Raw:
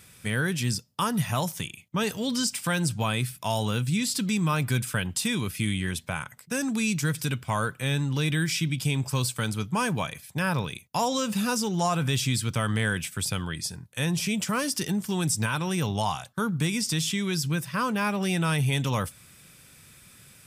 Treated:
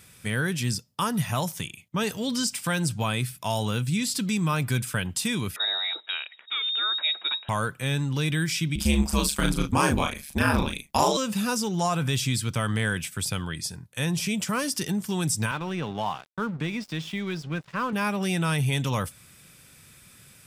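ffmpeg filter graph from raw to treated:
ffmpeg -i in.wav -filter_complex "[0:a]asettb=1/sr,asplit=3[link_01][link_02][link_03];[link_01]atrim=end=5.564[link_04];[link_02]atrim=start=5.56:end=7.49,asetpts=PTS-STARTPTS,afade=type=in:duration=0.004:curve=qsin,afade=type=out:start_time=1.926:duration=0.004:curve=qsin,lowpass=frequency=3300:width_type=q:width=0.5098,lowpass=frequency=3300:width_type=q:width=0.6013,lowpass=frequency=3300:width_type=q:width=0.9,lowpass=frequency=3300:width_type=q:width=2.563,afreqshift=-3900,acompressor=mode=upward:threshold=-39dB:ratio=2.5:attack=3.2:release=140:knee=2.83:detection=peak,highpass=300[link_05];[link_03]atrim=start=7.486[link_06];[link_04][link_05]acrossfade=duration=0.004:curve1=hsin:curve2=qsin[link_07];[link_07][link_06]acrossfade=duration=0.004:curve1=qsin:curve2=hsin,asettb=1/sr,asplit=3[link_08][link_09][link_10];[link_08]atrim=end=8.754[link_11];[link_09]atrim=start=8.75:end=11.17,asetpts=PTS-STARTPTS,afade=type=in:duration=0.004:curve=qsin,afade=type=out:start_time=2.416:duration=0.004:curve=qsin,asplit=2[link_12][link_13];[link_13]adelay=36,volume=-4.5dB[link_14];[link_12][link_14]amix=inputs=2:normalize=0,atrim=end_sample=106722,acontrast=46,aeval=exprs='val(0)*sin(2*PI*72*n/s)':channel_layout=same[link_15];[link_10]atrim=start=11.166[link_16];[link_11][link_15]acrossfade=duration=0.004:curve1=hsin:curve2=qsin[link_17];[link_17][link_16]acrossfade=duration=0.004:curve1=qsin:curve2=hsin,asettb=1/sr,asplit=3[link_18][link_19][link_20];[link_18]atrim=end=15.514[link_21];[link_19]atrim=start=15.51:end=17.93,asetpts=PTS-STARTPTS,afade=type=in:duration=0.004:curve=qsin,afade=type=out:start_time=2.416:duration=0.004:curve=qsin,highpass=160,lowpass=2900,aeval=exprs='sgn(val(0))*max(abs(val(0))-0.00631,0)':channel_layout=same[link_22];[link_20]atrim=start=17.926[link_23];[link_21][link_22]acrossfade=duration=0.004:curve1=hsin:curve2=qsin[link_24];[link_24][link_23]acrossfade=duration=0.004:curve1=qsin:curve2=hsin" out.wav

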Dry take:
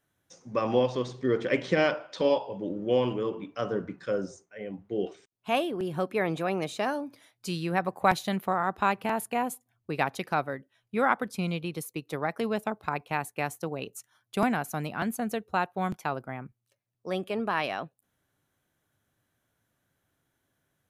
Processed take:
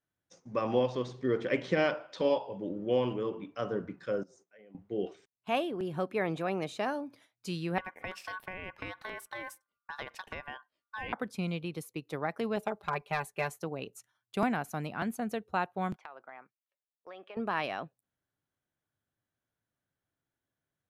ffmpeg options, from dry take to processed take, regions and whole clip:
ffmpeg -i in.wav -filter_complex "[0:a]asettb=1/sr,asplit=3[link_01][link_02][link_03];[link_01]atrim=end=4.234[link_04];[link_02]atrim=start=4.23:end=4.75,asetpts=PTS-STARTPTS,afade=type=in:duration=0.004:curve=qsin,afade=type=out:start_time=0.516:duration=0.004:curve=qsin,highpass=180,acompressor=threshold=-51dB:ratio=5:attack=3.2:release=140:knee=1:detection=peak[link_05];[link_03]atrim=start=4.746[link_06];[link_04][link_05]acrossfade=duration=0.004:curve1=hsin:curve2=qsin[link_07];[link_07][link_06]acrossfade=duration=0.004:curve1=qsin:curve2=hsin,asettb=1/sr,asplit=3[link_08][link_09][link_10];[link_08]atrim=end=7.784[link_11];[link_09]atrim=start=7.78:end=11.13,asetpts=PTS-STARTPTS,afade=type=in:duration=0.004:curve=qsin,afade=type=out:start_time=3.346:duration=0.004:curve=qsin,acompressor=threshold=-30dB:ratio=4:attack=3.2:release=140:knee=1:detection=peak,aeval=exprs='val(0)*sin(2*PI*1300*n/s)':channel_layout=same[link_12];[link_10]atrim=start=11.126[link_13];[link_11][link_12]acrossfade=duration=0.004:curve1=hsin:curve2=qsin[link_14];[link_14][link_13]acrossfade=duration=0.004:curve1=qsin:curve2=hsin,asettb=1/sr,asplit=3[link_15][link_16][link_17];[link_15]atrim=end=12.564[link_18];[link_16]atrim=start=12.56:end=13.64,asetpts=PTS-STARTPTS,afade=type=in:duration=0.004:curve=qsin,afade=type=out:start_time=1.076:duration=0.004:curve=qsin,volume=17.5dB,asoftclip=hard,volume=-17.5dB,equalizer=frequency=230:width=3.9:gain=-10,aecho=1:1:5:0.84,atrim=end_sample=47628[link_19];[link_17]atrim=start=13.636[link_20];[link_18][link_19]acrossfade=duration=0.004:curve1=hsin:curve2=qsin[link_21];[link_21][link_20]acrossfade=duration=0.004:curve1=qsin:curve2=hsin,asettb=1/sr,asplit=3[link_22][link_23][link_24];[link_22]atrim=end=15.964[link_25];[link_23]atrim=start=15.96:end=17.37,asetpts=PTS-STARTPTS,afade=type=in:duration=0.004:curve=qsin,afade=type=out:start_time=1.406:duration=0.004:curve=qsin,highpass=690,lowpass=2600,acompressor=threshold=-38dB:ratio=10:attack=3.2:release=140:knee=1:detection=peak[link_26];[link_24]atrim=start=17.366[link_27];[link_25][link_26]acrossfade=duration=0.004:curve1=hsin:curve2=qsin[link_28];[link_28][link_27]acrossfade=duration=0.004:curve1=qsin:curve2=hsin,agate=range=-9dB:threshold=-55dB:ratio=16:detection=peak,highshelf=frequency=7500:gain=-8,volume=-3.5dB" out.wav

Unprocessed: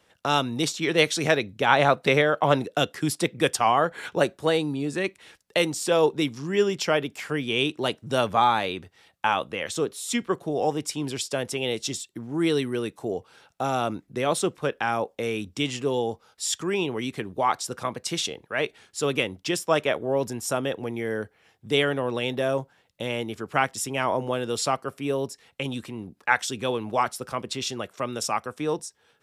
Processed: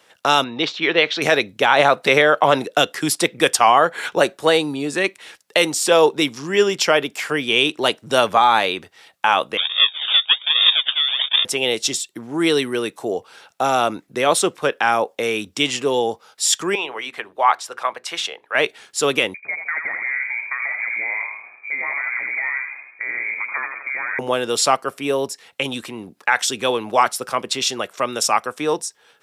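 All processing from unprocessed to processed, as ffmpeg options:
ffmpeg -i in.wav -filter_complex "[0:a]asettb=1/sr,asplit=3[link_01][link_02][link_03];[link_01]atrim=end=0.444[link_04];[link_02]atrim=start=0.44:end=1.22,asetpts=PTS-STARTPTS,afade=type=in:duration=0.004:curve=qsin,afade=type=out:start_time=0.776:duration=0.004:curve=qsin,lowpass=frequency=3800:width=0.5412,lowpass=frequency=3800:width=1.3066,lowshelf=frequency=220:gain=-6.5[link_05];[link_03]atrim=start=1.216[link_06];[link_04][link_05]acrossfade=duration=0.004:curve1=hsin:curve2=qsin[link_07];[link_07][link_06]acrossfade=duration=0.004:curve1=qsin:curve2=hsin,asettb=1/sr,asplit=3[link_08][link_09][link_10];[link_08]atrim=end=9.574[link_11];[link_09]atrim=start=9.57:end=11.45,asetpts=PTS-STARTPTS,afade=type=in:duration=0.004:curve=qsin,afade=type=out:start_time=1.876:duration=0.004:curve=qsin,acrusher=samples=42:mix=1:aa=0.000001:lfo=1:lforange=42:lforate=1.2,lowpass=frequency=3100:width_type=q:width=0.5098,lowpass=frequency=3100:width_type=q:width=0.6013,lowpass=frequency=3100:width_type=q:width=0.9,lowpass=frequency=3100:width_type=q:width=2.563,afreqshift=-3700[link_12];[link_10]atrim=start=11.446[link_13];[link_11][link_12]acrossfade=duration=0.004:curve1=hsin:curve2=qsin[link_14];[link_14][link_13]acrossfade=duration=0.004:curve1=qsin:curve2=hsin,asettb=1/sr,asplit=3[link_15][link_16][link_17];[link_15]atrim=end=16.754[link_18];[link_16]atrim=start=16.75:end=18.55,asetpts=PTS-STARTPTS,afade=type=in:duration=0.004:curve=qsin,afade=type=out:start_time=1.796:duration=0.004:curve=qsin,acrossover=split=540 3100:gain=0.126 1 0.251[link_19][link_20][link_21];[link_19][link_20][link_21]amix=inputs=3:normalize=0,bandreject=frequency=60:width_type=h:width=6,bandreject=frequency=120:width_type=h:width=6,bandreject=frequency=180:width_type=h:width=6,bandreject=frequency=240:width_type=h:width=6,bandreject=frequency=300:width_type=h:width=6,bandreject=frequency=360:width_type=h:width=6,bandreject=frequency=420:width_type=h:width=6[link_22];[link_17]atrim=start=18.546[link_23];[link_18][link_22]acrossfade=duration=0.004:curve1=hsin:curve2=qsin[link_24];[link_24][link_23]acrossfade=duration=0.004:curve1=qsin:curve2=hsin,asettb=1/sr,asplit=3[link_25][link_26][link_27];[link_25]atrim=end=19.344[link_28];[link_26]atrim=start=19.34:end=24.19,asetpts=PTS-STARTPTS,afade=type=in:duration=0.004:curve=qsin,afade=type=out:start_time=4.846:duration=0.004:curve=qsin,acompressor=threshold=-30dB:ratio=10:attack=3.2:release=140:knee=1:detection=peak,asplit=8[link_29][link_30][link_31][link_32][link_33][link_34][link_35][link_36];[link_30]adelay=82,afreqshift=-51,volume=-6dB[link_37];[link_31]adelay=164,afreqshift=-102,volume=-11.2dB[link_38];[link_32]adelay=246,afreqshift=-153,volume=-16.4dB[link_39];[link_33]adelay=328,afreqshift=-204,volume=-21.6dB[link_40];[link_34]adelay=410,afreqshift=-255,volume=-26.8dB[link_41];[link_35]adelay=492,afreqshift=-306,volume=-32dB[link_42];[link_36]adelay=574,afreqshift=-357,volume=-37.2dB[link_43];[link_29][link_37][link_38][link_39][link_40][link_41][link_42][link_43]amix=inputs=8:normalize=0,atrim=end_sample=213885,lowpass=frequency=2100:width_type=q:width=0.5098,lowpass=frequency=2100:width_type=q:width=0.6013,lowpass=frequency=2100:width_type=q:width=0.9,lowpass=frequency=2100:width_type=q:width=2.563,afreqshift=-2500[link_44];[link_27]atrim=start=24.186[link_45];[link_28][link_44]acrossfade=duration=0.004:curve1=hsin:curve2=qsin[link_46];[link_46][link_45]acrossfade=duration=0.004:curve1=qsin:curve2=hsin,highpass=frequency=520:poles=1,alimiter=level_in=11.5dB:limit=-1dB:release=50:level=0:latency=1,volume=-1.5dB" out.wav

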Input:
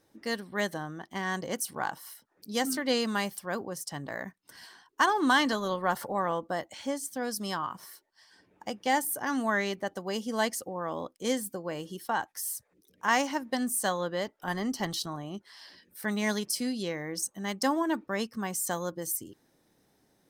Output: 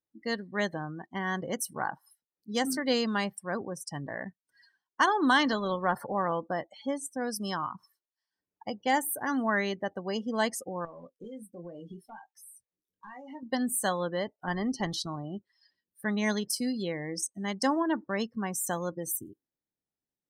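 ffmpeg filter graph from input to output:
ffmpeg -i in.wav -filter_complex "[0:a]asettb=1/sr,asplit=3[link_01][link_02][link_03];[link_01]atrim=end=10.854[link_04];[link_02]atrim=start=10.85:end=13.43,asetpts=PTS-STARTPTS,afade=type=in:duration=0.004:curve=qsin,afade=type=out:start_time=2.576:duration=0.004:curve=qsin,acompressor=threshold=-39dB:ratio=16:attack=3.2:release=140:knee=1:detection=peak,aeval=exprs='0.0133*(abs(mod(val(0)/0.0133+3,4)-2)-1)':channel_layout=same,asplit=2[link_05][link_06];[link_06]adelay=23,volume=-6.5dB[link_07];[link_05][link_07]amix=inputs=2:normalize=0,atrim=end_sample=113778[link_08];[link_03]atrim=start=13.426[link_09];[link_04][link_08]acrossfade=duration=0.004:curve1=hsin:curve2=qsin[link_10];[link_10][link_09]acrossfade=duration=0.004:curve1=qsin:curve2=hsin,afftdn=noise_reduction=30:noise_floor=-41,lowshelf=frequency=93:gain=8" out.wav

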